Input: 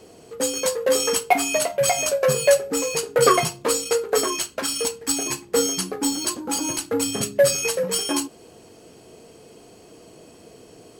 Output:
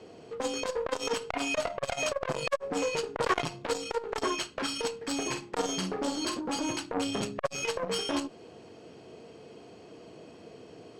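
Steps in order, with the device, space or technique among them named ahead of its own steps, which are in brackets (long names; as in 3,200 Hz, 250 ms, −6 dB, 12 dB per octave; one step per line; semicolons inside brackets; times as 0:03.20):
valve radio (band-pass filter 80–4,100 Hz; tube saturation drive 17 dB, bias 0.45; saturating transformer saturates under 830 Hz)
0:05.20–0:06.41: double-tracking delay 48 ms −7.5 dB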